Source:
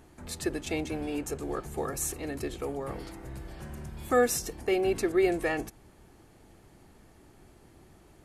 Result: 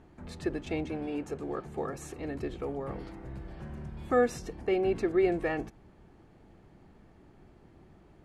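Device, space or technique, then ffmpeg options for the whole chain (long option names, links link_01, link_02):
phone in a pocket: -filter_complex "[0:a]asettb=1/sr,asplit=3[link_01][link_02][link_03];[link_01]atrim=end=0.914[link_04];[link_02]atrim=start=0.91:end=2.19,asetpts=PTS-STARTPTS,afade=type=in:duration=0.004:curve=qsin,afade=type=out:start_time=1.276:duration=0.004:curve=qsin,highpass=frequency=120:poles=1[link_05];[link_03]atrim=start=2.186[link_06];[link_04][link_05]acrossfade=duration=0.004:curve1=hsin:curve2=qsin[link_07];[link_07][link_06]acrossfade=duration=0.004:curve1=qsin:curve2=hsin,lowpass=3200,aemphasis=mode=production:type=75fm,equalizer=frequency=180:width_type=o:width=0.51:gain=4,highshelf=frequency=2100:gain=-11"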